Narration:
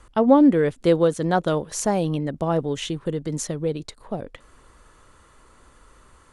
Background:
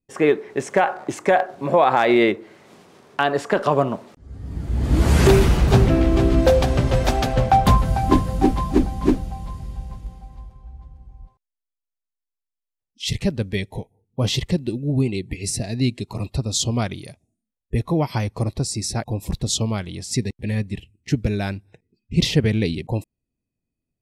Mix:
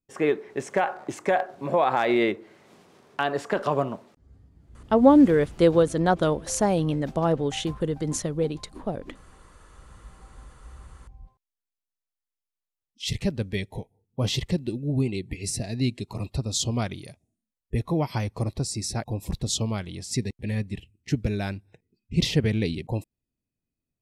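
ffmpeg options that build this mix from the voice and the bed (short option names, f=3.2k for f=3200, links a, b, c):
-filter_complex "[0:a]adelay=4750,volume=-0.5dB[a];[1:a]volume=16.5dB,afade=t=out:st=3.79:d=0.72:silence=0.0891251,afade=t=in:st=9.69:d=1.2:silence=0.0749894[b];[a][b]amix=inputs=2:normalize=0"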